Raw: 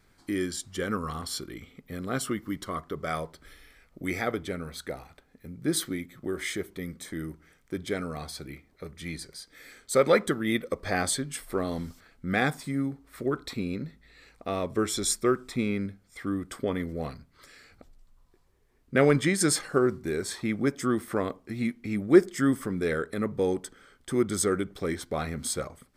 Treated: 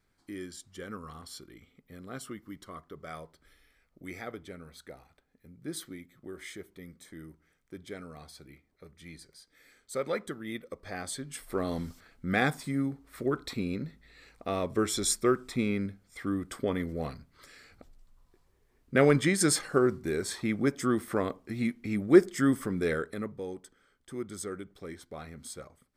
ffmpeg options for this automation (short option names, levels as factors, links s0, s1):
-af "volume=0.891,afade=t=in:st=11.06:d=0.65:silence=0.316228,afade=t=out:st=22.88:d=0.53:silence=0.281838"